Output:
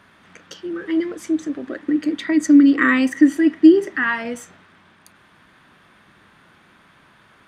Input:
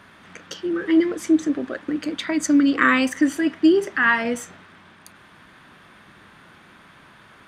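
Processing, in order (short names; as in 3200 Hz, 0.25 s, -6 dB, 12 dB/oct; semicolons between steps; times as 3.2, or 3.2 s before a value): 1.67–4.04 small resonant body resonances 300/1900 Hz, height 10 dB, ringing for 25 ms; gain -3.5 dB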